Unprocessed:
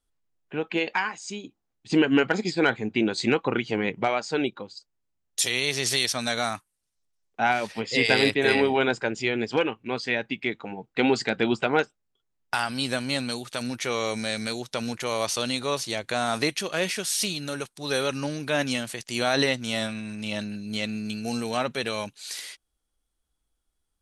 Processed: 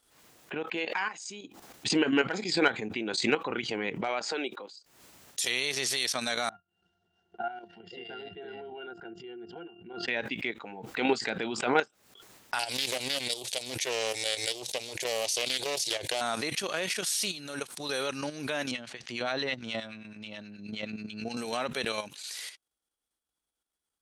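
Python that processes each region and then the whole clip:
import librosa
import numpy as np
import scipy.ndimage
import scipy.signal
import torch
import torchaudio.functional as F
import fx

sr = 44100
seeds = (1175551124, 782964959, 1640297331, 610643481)

y = fx.chain(x, sr, fx.highpass(hz=310.0, slope=12),
    fx.band_squash(depth_pct=70), at=(4.23, 4.74))
y = fx.chain(y, sr, fx.lowpass(hz=6900.0, slope=12),
    fx.octave_resonator(note='F', decay_s=0.13), at=(6.49, 10.08))
y = fx.chain(y, sr, fx.high_shelf(hz=2500.0, db=5.5),
    fx.fixed_phaser(hz=520.0, stages=4),
    fx.doppler_dist(depth_ms=0.37), at=(12.59, 16.21))
y = fx.chain(y, sr, fx.lowpass(hz=4100.0, slope=12),
    fx.peak_eq(hz=83.0, db=5.0, octaves=2.6),
    fx.harmonic_tremolo(hz=9.4, depth_pct=70, crossover_hz=1200.0), at=(18.71, 21.37))
y = fx.level_steps(y, sr, step_db=10)
y = fx.highpass(y, sr, hz=350.0, slope=6)
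y = fx.pre_swell(y, sr, db_per_s=69.0)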